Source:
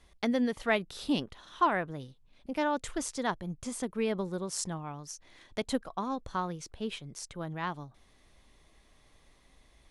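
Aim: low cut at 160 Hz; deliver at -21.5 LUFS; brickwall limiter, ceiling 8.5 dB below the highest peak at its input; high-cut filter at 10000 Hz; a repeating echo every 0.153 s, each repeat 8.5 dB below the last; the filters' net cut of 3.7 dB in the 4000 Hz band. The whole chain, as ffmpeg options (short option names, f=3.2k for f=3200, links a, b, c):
-af "highpass=160,lowpass=10k,equalizer=f=4k:t=o:g=-5,alimiter=limit=-23dB:level=0:latency=1,aecho=1:1:153|306|459|612:0.376|0.143|0.0543|0.0206,volume=14.5dB"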